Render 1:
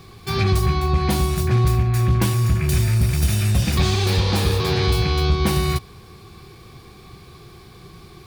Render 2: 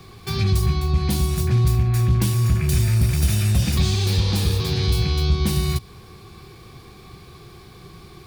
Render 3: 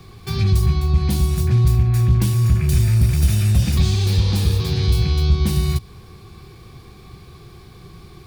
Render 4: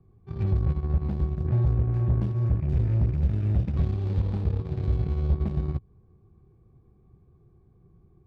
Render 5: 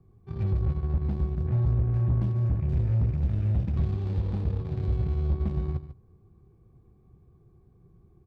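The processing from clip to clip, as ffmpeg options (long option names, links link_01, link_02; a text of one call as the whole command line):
ffmpeg -i in.wav -filter_complex "[0:a]acrossover=split=280|3000[link_01][link_02][link_03];[link_02]acompressor=threshold=-33dB:ratio=6[link_04];[link_01][link_04][link_03]amix=inputs=3:normalize=0" out.wav
ffmpeg -i in.wav -af "lowshelf=frequency=170:gain=6,volume=-1.5dB" out.wav
ffmpeg -i in.wav -af "aeval=exprs='0.501*(cos(1*acos(clip(val(0)/0.501,-1,1)))-cos(1*PI/2))+0.0398*(cos(7*acos(clip(val(0)/0.501,-1,1)))-cos(7*PI/2))':channel_layout=same,adynamicsmooth=sensitivity=0.5:basefreq=630,volume=-8dB" out.wav
ffmpeg -i in.wav -af "asoftclip=type=tanh:threshold=-18dB,aecho=1:1:145:0.224" out.wav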